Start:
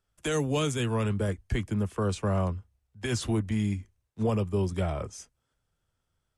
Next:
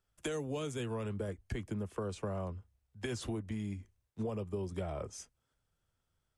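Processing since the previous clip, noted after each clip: dynamic bell 490 Hz, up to +5 dB, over -42 dBFS, Q 0.79; compression, threshold -32 dBFS, peak gain reduction 12 dB; trim -3 dB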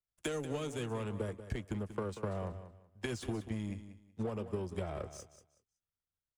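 power-law waveshaper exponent 1.4; feedback delay 187 ms, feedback 24%, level -12 dB; trim +3 dB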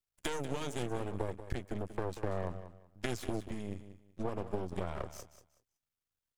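half-wave rectifier; trim +4.5 dB

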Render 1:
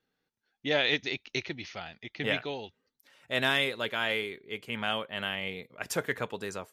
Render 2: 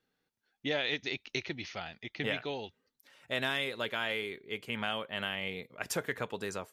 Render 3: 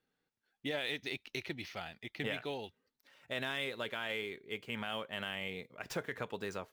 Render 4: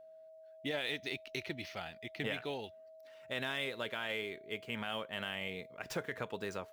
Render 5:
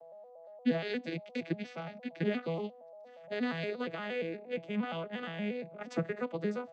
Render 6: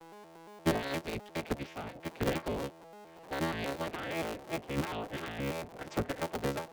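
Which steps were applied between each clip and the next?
compression 2.5:1, threshold -31 dBFS, peak gain reduction 6.5 dB
median filter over 5 samples; peak limiter -23.5 dBFS, peak gain reduction 6 dB; trim -2.5 dB
whistle 640 Hz -53 dBFS
vocoder on a broken chord major triad, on E3, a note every 117 ms; trim +5.5 dB
cycle switcher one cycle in 3, inverted

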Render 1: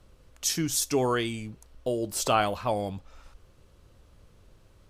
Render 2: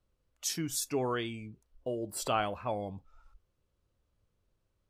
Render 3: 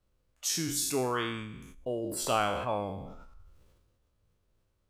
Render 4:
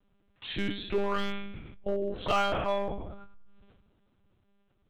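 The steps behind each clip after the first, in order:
spectral noise reduction 14 dB; trim -6.5 dB
spectral sustain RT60 0.68 s; decay stretcher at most 39 dB/s
monotone LPC vocoder at 8 kHz 200 Hz; in parallel at -5 dB: wavefolder -26.5 dBFS

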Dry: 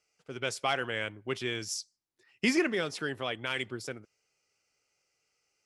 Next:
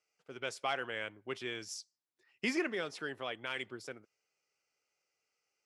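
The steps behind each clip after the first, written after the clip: high-pass 680 Hz 6 dB/octave; tilt EQ -2 dB/octave; trim -3 dB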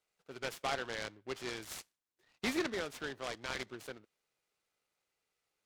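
delay time shaken by noise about 1.6 kHz, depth 0.058 ms; trim -1 dB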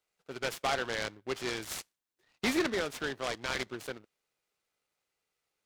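waveshaping leveller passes 1; trim +2.5 dB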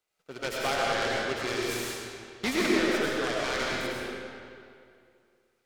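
algorithmic reverb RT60 2.3 s, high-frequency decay 0.8×, pre-delay 60 ms, DRR -4.5 dB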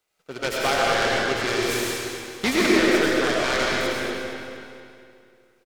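feedback delay 234 ms, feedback 45%, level -9 dB; trim +6.5 dB

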